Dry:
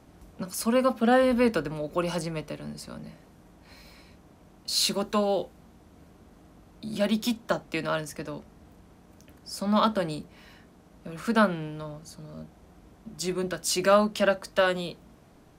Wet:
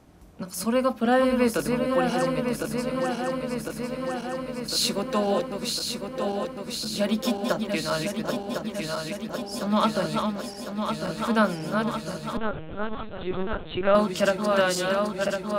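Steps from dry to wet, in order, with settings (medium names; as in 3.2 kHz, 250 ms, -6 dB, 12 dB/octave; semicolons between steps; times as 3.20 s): backward echo that repeats 527 ms, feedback 83%, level -5 dB; 12.37–13.95 s: LPC vocoder at 8 kHz pitch kept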